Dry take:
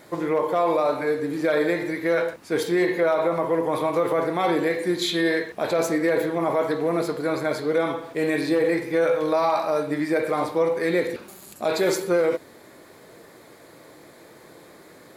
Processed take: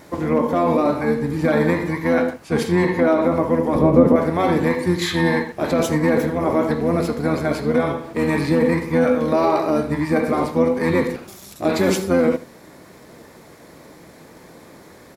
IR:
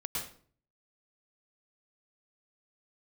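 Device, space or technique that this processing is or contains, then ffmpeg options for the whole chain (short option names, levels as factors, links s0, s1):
octave pedal: -filter_complex "[0:a]equalizer=f=3600:w=3.9:g=-4,asettb=1/sr,asplit=3[s0][s1][s2];[s0]atrim=end=2.454[s3];[s1]atrim=start=2.45:end=3.24,asetpts=PTS-STARTPTS,afade=t=in:d=0.004:c=qsin,afade=t=out:st=0.786:d=0.004:c=qsin,lowpass=12000[s4];[s2]atrim=start=3.236[s5];[s3][s4]acrossfade=d=0.004:c1=hsin:c2=qsin[s6];[s6][s5]acrossfade=d=0.004:c1=qsin:c2=hsin,asplit=2[s7][s8];[s8]asetrate=22050,aresample=44100,atempo=2,volume=0.794[s9];[s7][s9]amix=inputs=2:normalize=0,asettb=1/sr,asplit=3[s10][s11][s12];[s10]atrim=end=3.754[s13];[s11]atrim=start=3.75:end=4.16,asetpts=PTS-STARTPTS,afade=t=in:d=0.004:c=qsin,afade=t=out:st=0.406:d=0.004:c=qsin,tiltshelf=f=970:g=9[s14];[s12]atrim=start=4.156[s15];[s13][s14]acrossfade=d=0.004:c1=hsin:c2=qsin[s16];[s16][s15]acrossfade=d=0.004:c1=qsin:c2=hsin,aecho=1:1:79:0.133,volume=1.26"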